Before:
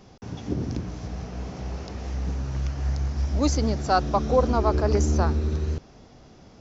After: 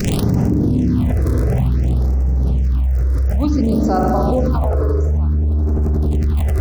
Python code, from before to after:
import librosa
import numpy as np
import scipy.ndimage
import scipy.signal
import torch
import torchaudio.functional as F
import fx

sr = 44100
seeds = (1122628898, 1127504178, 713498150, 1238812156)

y = fx.dmg_buzz(x, sr, base_hz=400.0, harmonics=36, level_db=-60.0, tilt_db=-1, odd_only=False)
y = fx.tilt_shelf(y, sr, db=7.0, hz=640.0)
y = fx.room_flutter(y, sr, wall_m=4.8, rt60_s=1.4, at=(0.56, 1.01))
y = fx.dmg_crackle(y, sr, seeds[0], per_s=58.0, level_db=-28.0)
y = fx.high_shelf(y, sr, hz=6800.0, db=11.0, at=(3.65, 4.68))
y = fx.rev_spring(y, sr, rt60_s=3.1, pass_ms=(40, 47), chirp_ms=50, drr_db=-2.0)
y = fx.phaser_stages(y, sr, stages=6, low_hz=200.0, high_hz=3600.0, hz=0.56, feedback_pct=5)
y = fx.env_flatten(y, sr, amount_pct=100)
y = y * librosa.db_to_amplitude(-13.0)